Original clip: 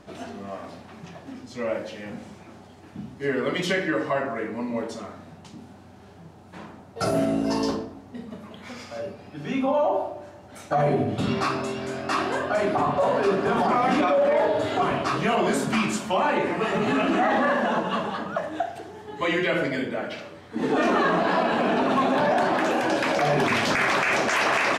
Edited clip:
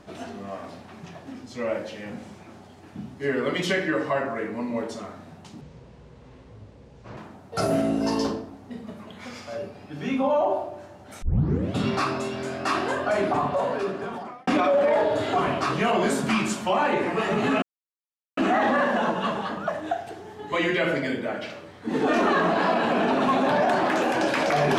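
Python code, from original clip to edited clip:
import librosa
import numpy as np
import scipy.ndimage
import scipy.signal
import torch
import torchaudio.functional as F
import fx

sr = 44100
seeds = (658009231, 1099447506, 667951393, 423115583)

y = fx.edit(x, sr, fx.speed_span(start_s=5.61, length_s=1.0, speed=0.64),
    fx.tape_start(start_s=10.66, length_s=0.52),
    fx.fade_out_span(start_s=12.69, length_s=1.22),
    fx.insert_silence(at_s=17.06, length_s=0.75), tone=tone)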